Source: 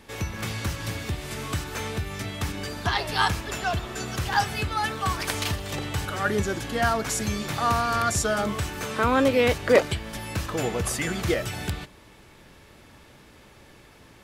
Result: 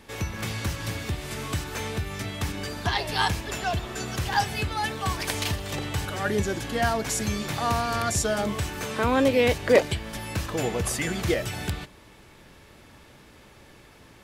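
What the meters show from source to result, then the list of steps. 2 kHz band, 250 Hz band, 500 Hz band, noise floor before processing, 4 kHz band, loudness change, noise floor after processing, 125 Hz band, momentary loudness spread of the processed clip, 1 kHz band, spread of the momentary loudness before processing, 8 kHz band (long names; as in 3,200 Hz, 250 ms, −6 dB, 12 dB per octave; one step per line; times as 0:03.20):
−1.5 dB, 0.0 dB, 0.0 dB, −52 dBFS, 0.0 dB, −0.5 dB, −52 dBFS, 0.0 dB, 11 LU, −2.0 dB, 11 LU, 0.0 dB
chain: dynamic equaliser 1,300 Hz, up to −7 dB, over −41 dBFS, Q 3.5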